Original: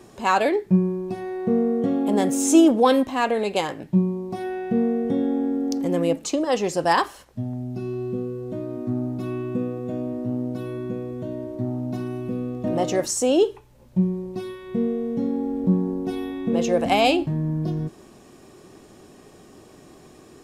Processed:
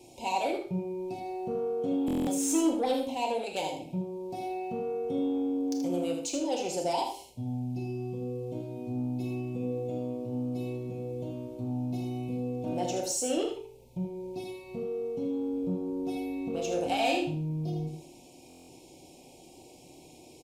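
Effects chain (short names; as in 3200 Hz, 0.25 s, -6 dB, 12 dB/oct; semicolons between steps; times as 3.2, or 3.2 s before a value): elliptic band-stop 910–2300 Hz, stop band 40 dB; low shelf 470 Hz -7 dB; de-hum 49.07 Hz, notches 12; in parallel at +2 dB: compressor, threshold -33 dBFS, peak gain reduction 17 dB; on the sum: soft clip -14.5 dBFS, distortion -18 dB; notch comb 210 Hz; on a send: echo 79 ms -7 dB; on the sum: Schroeder reverb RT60 0.37 s, combs from 25 ms, DRR 5 dB; stuck buffer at 2.06/18.48, samples 1024, times 8; gain -7.5 dB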